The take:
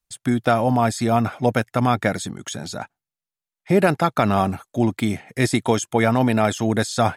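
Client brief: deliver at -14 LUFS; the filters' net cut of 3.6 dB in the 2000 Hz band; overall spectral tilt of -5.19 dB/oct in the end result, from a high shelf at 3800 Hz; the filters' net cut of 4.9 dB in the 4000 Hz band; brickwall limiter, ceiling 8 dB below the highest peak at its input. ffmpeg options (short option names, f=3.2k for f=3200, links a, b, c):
-af "equalizer=f=2k:t=o:g=-4,highshelf=f=3.8k:g=3,equalizer=f=4k:t=o:g=-7,volume=11dB,alimiter=limit=-1.5dB:level=0:latency=1"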